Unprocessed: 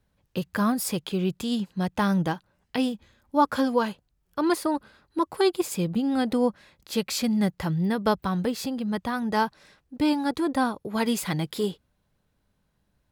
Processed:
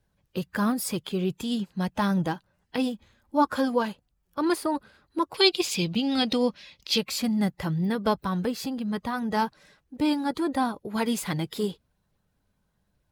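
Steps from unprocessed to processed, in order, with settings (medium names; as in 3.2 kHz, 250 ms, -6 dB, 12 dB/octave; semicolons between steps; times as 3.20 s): coarse spectral quantiser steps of 15 dB; 5.34–6.98 s: high-order bell 3.7 kHz +13 dB; trim -1 dB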